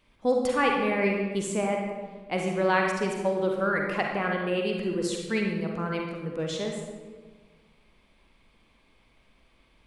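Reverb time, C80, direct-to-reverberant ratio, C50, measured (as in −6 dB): 1.5 s, 4.0 dB, 0.5 dB, 2.0 dB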